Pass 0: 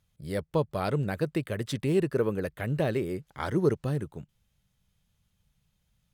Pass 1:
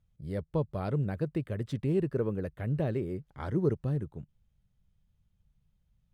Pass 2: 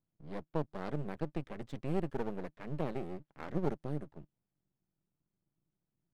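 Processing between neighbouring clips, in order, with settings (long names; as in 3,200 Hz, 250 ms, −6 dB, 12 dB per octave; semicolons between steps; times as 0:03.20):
spectral tilt −2.5 dB per octave; level −7.5 dB
low-pass that shuts in the quiet parts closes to 1,400 Hz, open at −26 dBFS; high-pass filter 140 Hz 24 dB per octave; half-wave rectification; level −2 dB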